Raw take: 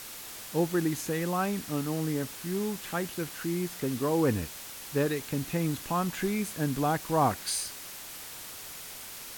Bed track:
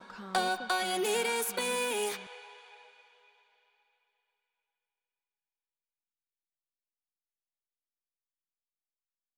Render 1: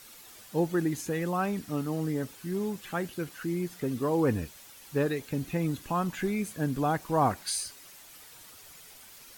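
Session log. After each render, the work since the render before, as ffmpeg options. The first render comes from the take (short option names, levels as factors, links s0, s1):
-af "afftdn=nr=10:nf=-43"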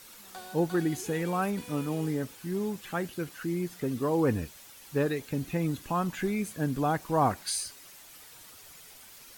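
-filter_complex "[1:a]volume=0.158[s0];[0:a][s0]amix=inputs=2:normalize=0"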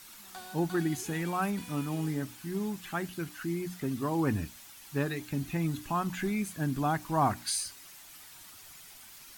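-af "equalizer=f=490:t=o:w=0.44:g=-12,bandreject=f=60:t=h:w=6,bandreject=f=120:t=h:w=6,bandreject=f=180:t=h:w=6,bandreject=f=240:t=h:w=6,bandreject=f=300:t=h:w=6"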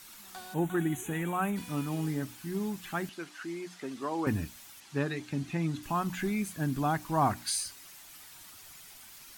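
-filter_complex "[0:a]asettb=1/sr,asplit=3[s0][s1][s2];[s0]atrim=end=0.544[s3];[s1]atrim=start=0.54:end=1.56,asetpts=PTS-STARTPTS,afade=t=in:d=0.004:c=qsin,afade=t=out:st=1.016:d=0.004:c=qsin,asuperstop=centerf=4900:order=4:qfactor=1.5[s4];[s2]atrim=start=1.556[s5];[s3][s4]acrossfade=d=0.004:c1=hsin:c2=qsin[s6];[s6][s5]acrossfade=d=0.004:c1=qsin:c2=hsin,asettb=1/sr,asplit=3[s7][s8][s9];[s7]atrim=end=3.094[s10];[s8]atrim=start=3.09:end=4.27,asetpts=PTS-STARTPTS,afade=t=in:d=0.004:c=qsin,afade=t=out:st=1.176:d=0.004:c=qsin,highpass=360,lowpass=7300[s11];[s9]atrim=start=4.266[s12];[s10][s11]acrossfade=d=0.004:c1=hsin:c2=qsin[s13];[s13][s12]acrossfade=d=0.004:c1=qsin:c2=hsin,asettb=1/sr,asplit=3[s14][s15][s16];[s14]atrim=end=4.804[s17];[s15]atrim=start=4.8:end=5.83,asetpts=PTS-STARTPTS,afade=t=in:d=0.004:c=qsin,afade=t=out:st=1.026:d=0.004:c=qsin,highpass=100,lowpass=7300[s18];[s16]atrim=start=5.826[s19];[s17][s18]acrossfade=d=0.004:c1=hsin:c2=qsin[s20];[s20][s19]acrossfade=d=0.004:c1=qsin:c2=hsin"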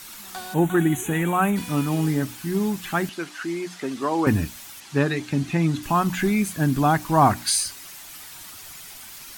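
-af "volume=3.16"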